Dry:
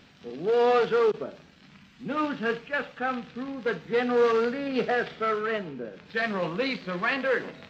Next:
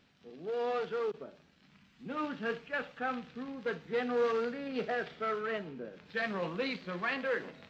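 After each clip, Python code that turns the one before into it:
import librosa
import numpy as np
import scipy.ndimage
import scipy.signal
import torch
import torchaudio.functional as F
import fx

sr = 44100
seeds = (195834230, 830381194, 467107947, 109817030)

y = fx.rider(x, sr, range_db=4, speed_s=2.0)
y = y * librosa.db_to_amplitude(-8.5)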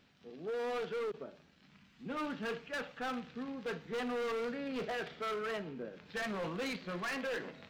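y = np.clip(x, -10.0 ** (-34.5 / 20.0), 10.0 ** (-34.5 / 20.0))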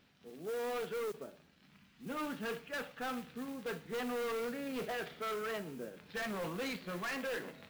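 y = fx.mod_noise(x, sr, seeds[0], snr_db=18)
y = y * librosa.db_to_amplitude(-1.0)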